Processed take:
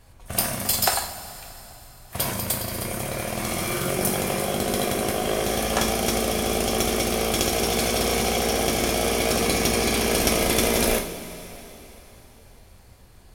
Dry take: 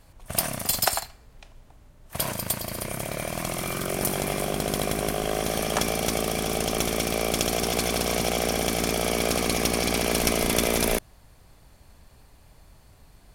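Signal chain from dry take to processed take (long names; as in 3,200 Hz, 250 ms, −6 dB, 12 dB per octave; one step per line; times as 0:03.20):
0:03.36–0:03.90: flutter between parallel walls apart 10.2 metres, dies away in 0.55 s
coupled-rooms reverb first 0.34 s, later 3.8 s, from −18 dB, DRR 1 dB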